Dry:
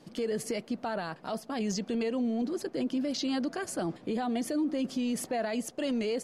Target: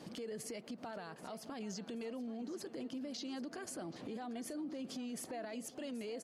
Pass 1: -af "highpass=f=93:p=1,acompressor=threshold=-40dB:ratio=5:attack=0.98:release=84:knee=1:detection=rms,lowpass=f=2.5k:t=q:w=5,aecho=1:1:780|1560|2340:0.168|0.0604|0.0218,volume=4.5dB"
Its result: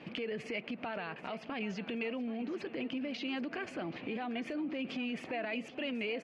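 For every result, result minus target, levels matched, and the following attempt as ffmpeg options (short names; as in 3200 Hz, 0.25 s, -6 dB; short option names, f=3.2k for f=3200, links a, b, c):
2000 Hz band +7.5 dB; compressor: peak gain reduction -5 dB
-af "highpass=f=93:p=1,acompressor=threshold=-40dB:ratio=5:attack=0.98:release=84:knee=1:detection=rms,aecho=1:1:780|1560|2340:0.168|0.0604|0.0218,volume=4.5dB"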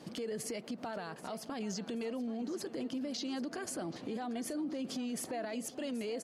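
compressor: peak gain reduction -5 dB
-af "highpass=f=93:p=1,acompressor=threshold=-46.5dB:ratio=5:attack=0.98:release=84:knee=1:detection=rms,aecho=1:1:780|1560|2340:0.168|0.0604|0.0218,volume=4.5dB"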